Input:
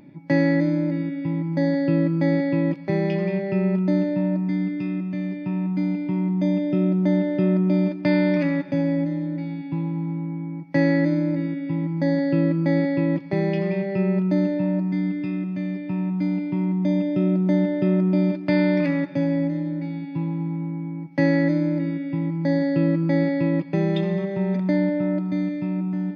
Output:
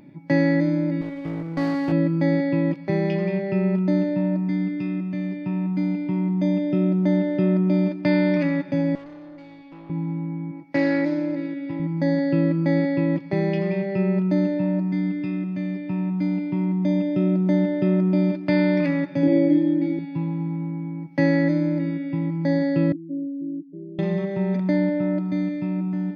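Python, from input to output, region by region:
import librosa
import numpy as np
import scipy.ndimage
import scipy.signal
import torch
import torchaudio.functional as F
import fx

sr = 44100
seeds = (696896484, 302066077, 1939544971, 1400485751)

y = fx.chain(x, sr, fx.lower_of_two(delay_ms=0.48),
    fx.low_shelf(hz=210.0, db=-7.5), at=(1.01, 1.92))
y = fx.chain(y, sr, fx.highpass(hz=470.0, slope=12),
    fx.peak_eq(hz=1600.0, db=-3.5, octaves=1.8),
    fx.tube_stage(drive_db=37.0, bias=0.5), at=(8.95, 9.9))
y = fx.chain(y, sr, fx.peak_eq(hz=170.0, db=-12.0, octaves=0.51),
    fx.doppler_dist(depth_ms=0.12), at=(10.51, 11.8))
y = fx.chain(y, sr, fx.small_body(hz=(330.0, 3300.0), ring_ms=70, db=17),
    fx.room_flutter(wall_m=7.7, rt60_s=0.57), at=(19.23, 19.99))
y = fx.chain(y, sr, fx.spec_expand(power=3.1),
    fx.ladder_bandpass(hz=360.0, resonance_pct=55), at=(22.92, 23.99))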